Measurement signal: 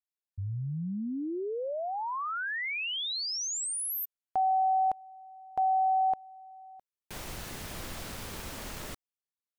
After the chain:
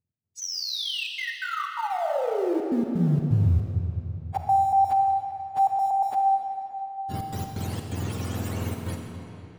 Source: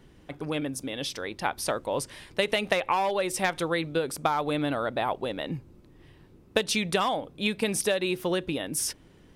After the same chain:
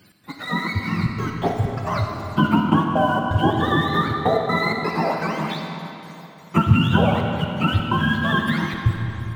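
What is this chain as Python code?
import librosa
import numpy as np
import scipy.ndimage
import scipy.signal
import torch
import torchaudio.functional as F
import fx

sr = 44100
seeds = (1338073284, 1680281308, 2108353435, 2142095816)

p1 = fx.octave_mirror(x, sr, pivot_hz=770.0)
p2 = np.where(np.abs(p1) >= 10.0 ** (-37.0 / 20.0), p1, 0.0)
p3 = p1 + (p2 * 10.0 ** (-11.5 / 20.0))
p4 = fx.step_gate(p3, sr, bpm=127, pattern='x.xxxxxxx.x.x', floor_db=-60.0, edge_ms=4.5)
p5 = fx.rev_freeverb(p4, sr, rt60_s=3.2, hf_ratio=0.8, predelay_ms=5, drr_db=2.0)
y = p5 * 10.0 ** (5.5 / 20.0)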